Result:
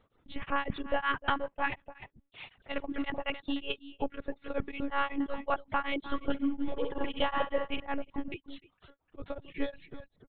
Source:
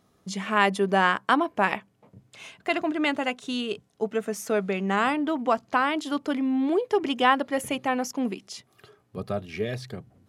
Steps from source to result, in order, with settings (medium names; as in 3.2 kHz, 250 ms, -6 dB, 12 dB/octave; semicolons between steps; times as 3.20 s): bass shelf 170 Hz -2.5 dB; monotone LPC vocoder at 8 kHz 280 Hz; reverb removal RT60 1.1 s; 5.99–7.80 s: flutter echo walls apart 11.3 m, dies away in 0.5 s; peak limiter -16 dBFS, peak gain reduction 9.5 dB; on a send: delay 301 ms -14.5 dB; on the sum: tremolo of two beating tones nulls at 5.4 Hz